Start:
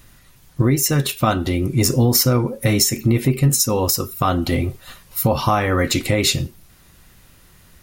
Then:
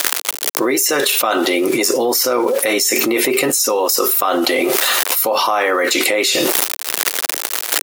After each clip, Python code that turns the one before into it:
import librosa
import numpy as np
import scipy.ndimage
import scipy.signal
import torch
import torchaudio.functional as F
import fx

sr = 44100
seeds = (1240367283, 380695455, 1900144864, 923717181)

y = np.where(np.abs(x) >= 10.0 ** (-42.0 / 20.0), x, 0.0)
y = scipy.signal.sosfilt(scipy.signal.butter(4, 390.0, 'highpass', fs=sr, output='sos'), y)
y = fx.env_flatten(y, sr, amount_pct=100)
y = F.gain(torch.from_numpy(y), -2.5).numpy()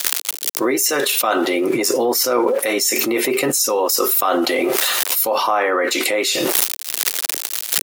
y = fx.band_widen(x, sr, depth_pct=100)
y = F.gain(torch.from_numpy(y), -1.5).numpy()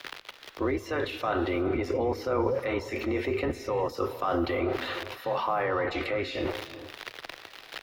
y = fx.octave_divider(x, sr, octaves=2, level_db=-5.0)
y = fx.air_absorb(y, sr, metres=340.0)
y = fx.rev_gated(y, sr, seeds[0], gate_ms=430, shape='rising', drr_db=11.5)
y = F.gain(torch.from_numpy(y), -9.0).numpy()